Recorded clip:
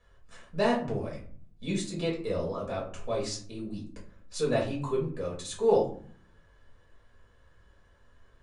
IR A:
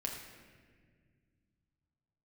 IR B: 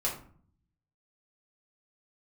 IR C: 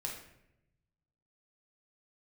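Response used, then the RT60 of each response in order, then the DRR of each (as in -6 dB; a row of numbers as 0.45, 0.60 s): B; 1.8, 0.50, 0.85 s; 0.0, -5.0, -1.0 dB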